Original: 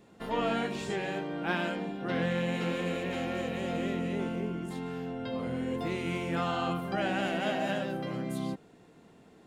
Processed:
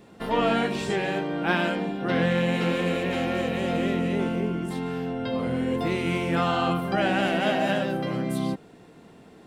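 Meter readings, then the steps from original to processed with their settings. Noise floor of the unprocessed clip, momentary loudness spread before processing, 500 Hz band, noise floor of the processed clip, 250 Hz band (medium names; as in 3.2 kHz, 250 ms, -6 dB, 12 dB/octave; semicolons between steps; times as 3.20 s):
-58 dBFS, 6 LU, +7.0 dB, -51 dBFS, +7.0 dB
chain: band-stop 6.8 kHz, Q 11; trim +7 dB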